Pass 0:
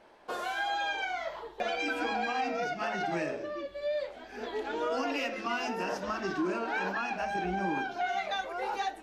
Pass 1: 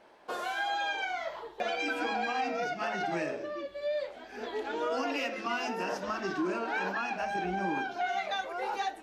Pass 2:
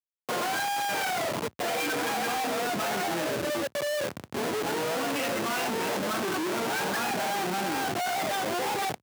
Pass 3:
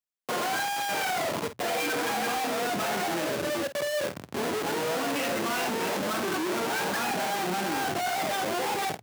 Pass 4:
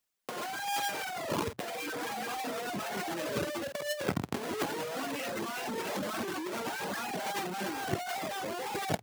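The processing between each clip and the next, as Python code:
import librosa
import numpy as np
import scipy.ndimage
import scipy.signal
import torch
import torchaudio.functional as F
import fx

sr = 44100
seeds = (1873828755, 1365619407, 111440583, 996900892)

y1 = fx.low_shelf(x, sr, hz=77.0, db=-9.5)
y2 = fx.schmitt(y1, sr, flips_db=-39.0)
y2 = fx.quant_dither(y2, sr, seeds[0], bits=10, dither='none')
y2 = scipy.signal.sosfilt(scipy.signal.bessel(8, 160.0, 'highpass', norm='mag', fs=sr, output='sos'), y2)
y2 = y2 * 10.0 ** (5.0 / 20.0)
y3 = fx.hum_notches(y2, sr, base_hz=60, count=2)
y3 = fx.doubler(y3, sr, ms=50.0, db=-11.5)
y4 = fx.dereverb_blind(y3, sr, rt60_s=0.75)
y4 = fx.over_compress(y4, sr, threshold_db=-36.0, ratio=-0.5)
y4 = y4 * 10.0 ** (3.0 / 20.0)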